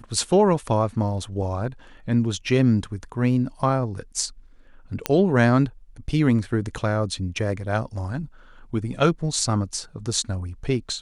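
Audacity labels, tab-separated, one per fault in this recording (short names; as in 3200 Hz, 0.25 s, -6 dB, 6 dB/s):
5.060000	5.060000	pop -6 dBFS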